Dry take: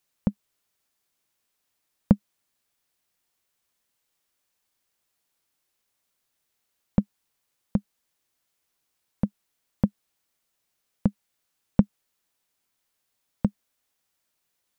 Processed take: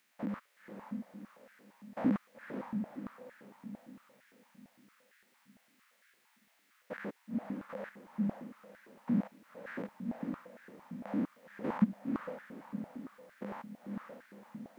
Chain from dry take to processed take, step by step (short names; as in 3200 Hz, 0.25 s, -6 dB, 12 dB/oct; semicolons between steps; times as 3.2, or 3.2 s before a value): stepped spectrum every 0.2 s; bell 1900 Hz +13 dB 1.4 oct; diffused feedback echo 0.508 s, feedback 47%, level -4.5 dB; stepped high-pass 8.8 Hz 220–1600 Hz; gain +2 dB